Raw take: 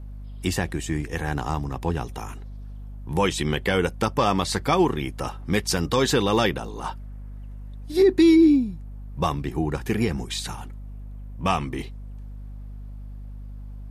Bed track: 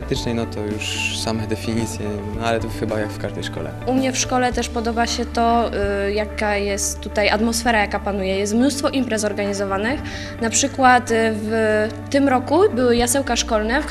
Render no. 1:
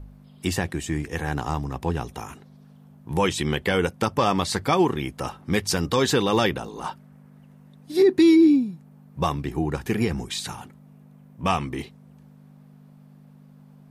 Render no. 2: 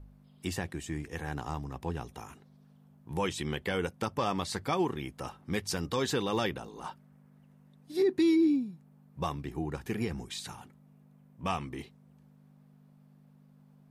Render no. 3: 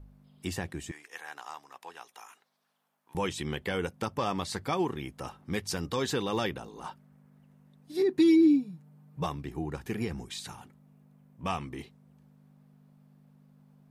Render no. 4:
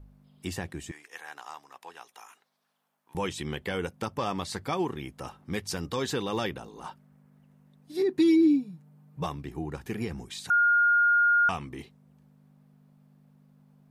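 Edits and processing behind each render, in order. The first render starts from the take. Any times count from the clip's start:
de-hum 50 Hz, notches 2
trim -9.5 dB
0.91–3.15 s: high-pass 940 Hz; 8.16–9.26 s: comb 6.6 ms, depth 75%
10.50–11.49 s: bleep 1.42 kHz -18.5 dBFS

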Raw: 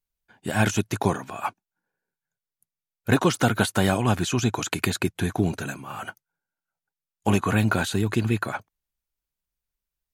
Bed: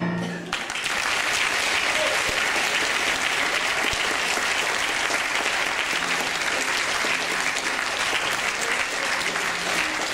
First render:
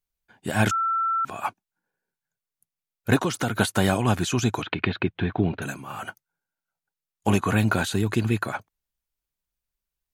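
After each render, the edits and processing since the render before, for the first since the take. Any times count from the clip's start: 0.71–1.25 s: bleep 1.34 kHz -21 dBFS; 3.16–3.56 s: compression 2:1, threshold -24 dBFS; 4.62–5.62 s: steep low-pass 3.6 kHz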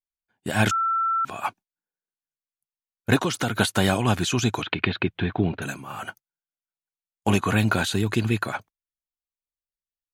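gate -44 dBFS, range -17 dB; dynamic bell 3.5 kHz, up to +4 dB, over -41 dBFS, Q 0.86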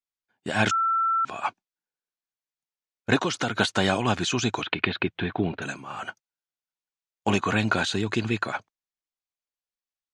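low-pass 7.2 kHz 24 dB/octave; bass shelf 140 Hz -10 dB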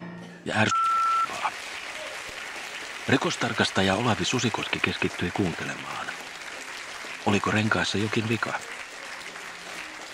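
add bed -13.5 dB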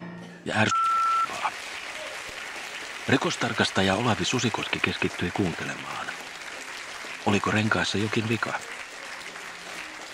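no audible change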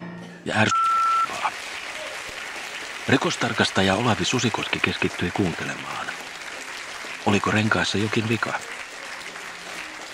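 trim +3 dB

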